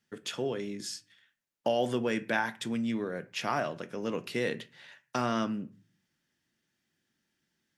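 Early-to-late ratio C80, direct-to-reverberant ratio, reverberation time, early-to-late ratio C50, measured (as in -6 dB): 24.0 dB, 11.0 dB, 0.40 s, 19.0 dB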